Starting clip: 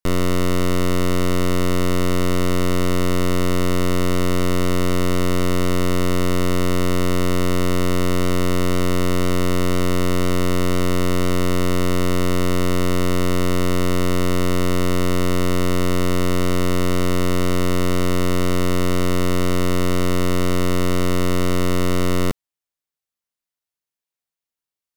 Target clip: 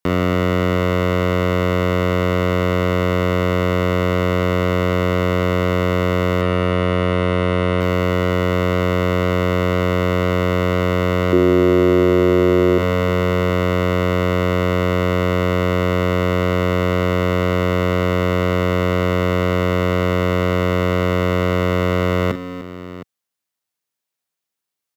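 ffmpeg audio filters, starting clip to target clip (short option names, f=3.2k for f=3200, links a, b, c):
-filter_complex "[0:a]asettb=1/sr,asplit=3[a][b][c];[a]atrim=end=6.414[d];[b]atrim=start=6.41:end=7.81,asetpts=PTS-STARTPTS,afade=t=in:d=0.004:c=qsin,afade=t=out:st=1.396:d=0.004:c=qsin,lowpass=f=3.6k:w=0.5412,lowpass=f=3.6k:w=1.3066[e];[c]atrim=start=7.806[f];[d][e]acrossfade=d=0.004:c1=hsin:c2=qsin[g];[g][f]acrossfade=d=0.004:c1=qsin:c2=hsin,asettb=1/sr,asplit=3[h][i][j];[h]atrim=end=11.324[k];[i]atrim=start=11.32:end=12.78,asetpts=PTS-STARTPTS,afade=t=in:d=0.004:c=qsin,afade=t=out:st=1.456:d=0.004:c=qsin,equalizer=f=350:w=2:g=14[l];[j]atrim=start=12.776[m];[k][l]acrossfade=d=0.004:c1=hsin:c2=qsin[n];[n][m]acrossfade=d=0.004:c1=qsin:c2=hsin,acrossover=split=570|2600[o][p][q];[o]highpass=96[r];[q]asoftclip=type=tanh:threshold=-33.5dB[s];[r][p][s]amix=inputs=3:normalize=0,aecho=1:1:43|298|713:0.282|0.168|0.15,asplit=2[t][u];[u]alimiter=limit=-16dB:level=0:latency=1,volume=-1dB[v];[t][v]amix=inputs=2:normalize=0"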